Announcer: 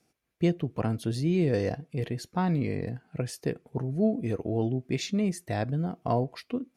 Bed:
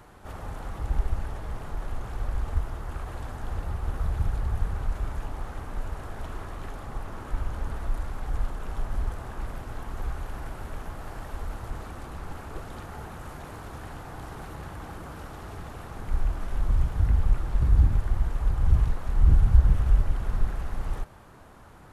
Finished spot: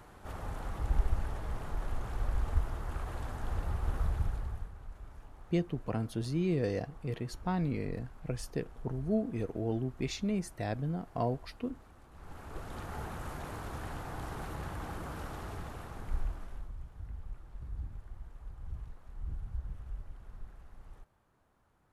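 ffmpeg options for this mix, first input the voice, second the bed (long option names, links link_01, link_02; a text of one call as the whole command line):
ffmpeg -i stem1.wav -i stem2.wav -filter_complex "[0:a]adelay=5100,volume=-5.5dB[link_01];[1:a]volume=14dB,afade=type=out:start_time=3.98:duration=0.73:silence=0.177828,afade=type=in:start_time=12.11:duration=0.86:silence=0.141254,afade=type=out:start_time=15.33:duration=1.39:silence=0.0944061[link_02];[link_01][link_02]amix=inputs=2:normalize=0" out.wav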